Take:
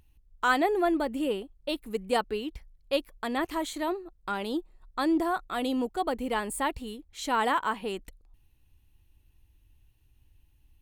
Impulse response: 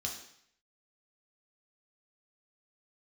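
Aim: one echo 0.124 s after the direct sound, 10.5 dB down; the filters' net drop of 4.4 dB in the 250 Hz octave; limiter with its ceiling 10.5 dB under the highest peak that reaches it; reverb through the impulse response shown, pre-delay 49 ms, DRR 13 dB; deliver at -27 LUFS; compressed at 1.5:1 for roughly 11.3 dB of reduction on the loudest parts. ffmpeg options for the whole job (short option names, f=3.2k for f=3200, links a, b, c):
-filter_complex "[0:a]equalizer=f=250:t=o:g=-6,acompressor=threshold=-53dB:ratio=1.5,alimiter=level_in=11dB:limit=-24dB:level=0:latency=1,volume=-11dB,aecho=1:1:124:0.299,asplit=2[a][b];[1:a]atrim=start_sample=2205,adelay=49[c];[b][c]afir=irnorm=-1:irlink=0,volume=-14dB[d];[a][d]amix=inputs=2:normalize=0,volume=17.5dB"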